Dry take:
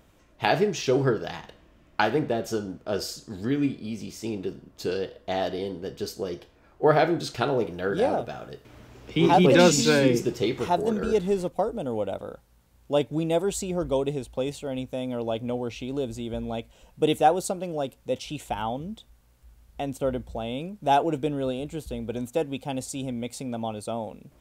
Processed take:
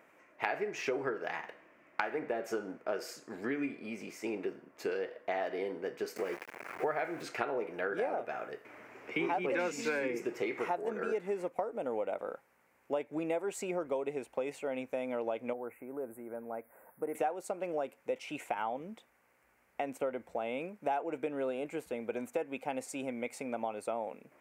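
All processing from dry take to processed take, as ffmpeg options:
ffmpeg -i in.wav -filter_complex "[0:a]asettb=1/sr,asplit=3[link_01][link_02][link_03];[link_01]atrim=end=6.164[link_04];[link_02]atrim=start=6.16:end=7.23,asetpts=PTS-STARTPTS,afade=type=in:duration=0.004:curve=qsin,afade=type=out:start_time=1.066:duration=0.004:curve=qsin,acompressor=mode=upward:threshold=-29dB:ratio=2.5:attack=3.2:release=140:knee=2.83:detection=peak,asubboost=boost=8.5:cutoff=140,aeval=exprs='val(0)*gte(abs(val(0)),0.0141)':channel_layout=same[link_05];[link_03]atrim=start=7.226[link_06];[link_04][link_05]acrossfade=duration=0.004:curve1=hsin:curve2=qsin[link_07];[link_07][link_06]acrossfade=duration=0.004:curve1=qsin:curve2=hsin,asettb=1/sr,asplit=3[link_08][link_09][link_10];[link_08]atrim=end=15.534[link_11];[link_09]atrim=start=15.53:end=17.15,asetpts=PTS-STARTPTS,afade=type=in:duration=0.004:curve=qsin,afade=type=out:start_time=1.616:duration=0.004:curve=qsin,aemphasis=mode=production:type=75kf,acompressor=threshold=-46dB:ratio=1.5:attack=3.2:release=140:knee=1:detection=peak,asuperstop=centerf=4400:order=8:qfactor=0.54[link_12];[link_10]atrim=start=17.146[link_13];[link_11][link_12]acrossfade=duration=0.004:curve1=hsin:curve2=qsin[link_14];[link_14][link_13]acrossfade=duration=0.004:curve1=qsin:curve2=hsin,highpass=380,highshelf=frequency=2800:width_type=q:width=3:gain=-8,acompressor=threshold=-31dB:ratio=6" out.wav

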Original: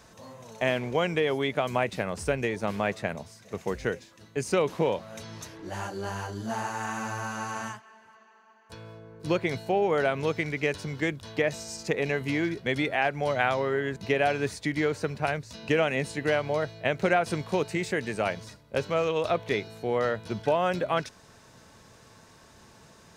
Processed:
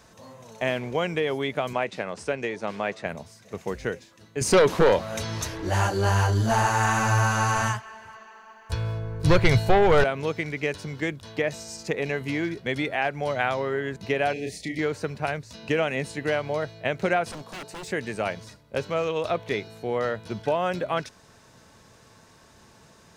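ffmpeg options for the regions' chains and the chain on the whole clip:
ffmpeg -i in.wav -filter_complex "[0:a]asettb=1/sr,asplit=3[link_01][link_02][link_03];[link_01]atrim=end=1.734[link_04];[link_02]atrim=start=1.73:end=3.06,asetpts=PTS-STARTPTS,afade=type=in:duration=0.004:curve=qsin,afade=type=out:start_time=1.326:duration=0.004:curve=qsin,highpass=120,lowpass=7100,bass=frequency=250:gain=-5,treble=frequency=4000:gain=0[link_05];[link_03]atrim=start=3.056[link_06];[link_04][link_05]acrossfade=duration=0.004:curve1=hsin:curve2=qsin[link_07];[link_07][link_06]acrossfade=duration=0.004:curve1=qsin:curve2=hsin,asettb=1/sr,asplit=3[link_08][link_09][link_10];[link_08]atrim=end=4.414[link_11];[link_09]atrim=start=4.41:end=10.04,asetpts=PTS-STARTPTS,afade=type=in:duration=0.004:curve=qsin,afade=type=out:start_time=5.626:duration=0.004:curve=qsin,aeval=exprs='0.251*sin(PI/2*2.24*val(0)/0.251)':channel_layout=same,asubboost=boost=12:cutoff=74[link_12];[link_10]atrim=start=10.036[link_13];[link_11][link_12]acrossfade=duration=0.004:curve1=hsin:curve2=qsin[link_14];[link_14][link_13]acrossfade=duration=0.004:curve1=qsin:curve2=hsin,asettb=1/sr,asplit=3[link_15][link_16][link_17];[link_15]atrim=end=14.334[link_18];[link_16]atrim=start=14.33:end=14.79,asetpts=PTS-STARTPTS,afade=type=in:duration=0.004:curve=qsin,afade=type=out:start_time=0.456:duration=0.004:curve=qsin,asplit=2[link_19][link_20];[link_20]adelay=31,volume=-4dB[link_21];[link_19][link_21]amix=inputs=2:normalize=0,atrim=end_sample=20286,acompressor=threshold=-33dB:ratio=1.5:attack=3.2:release=140:knee=1:detection=peak,asuperstop=centerf=1200:order=12:qfactor=1.2[link_22];[link_17]atrim=start=14.786[link_23];[link_18][link_22]acrossfade=duration=0.004:curve1=hsin:curve2=qsin[link_24];[link_24][link_23]acrossfade=duration=0.004:curve1=qsin:curve2=hsin,asettb=1/sr,asplit=3[link_25][link_26][link_27];[link_25]atrim=end=17.314[link_28];[link_26]atrim=start=17.31:end=17.88,asetpts=PTS-STARTPTS,afade=type=in:duration=0.004:curve=qsin,afade=type=out:start_time=0.566:duration=0.004:curve=qsin,highpass=180,equalizer=frequency=2200:width_type=o:width=1.1:gain=-9,aeval=exprs='0.0251*(abs(mod(val(0)/0.0251+3,4)-2)-1)':channel_layout=same[link_29];[link_27]atrim=start=17.876[link_30];[link_28][link_29]acrossfade=duration=0.004:curve1=hsin:curve2=qsin[link_31];[link_31][link_30]acrossfade=duration=0.004:curve1=qsin:curve2=hsin" out.wav

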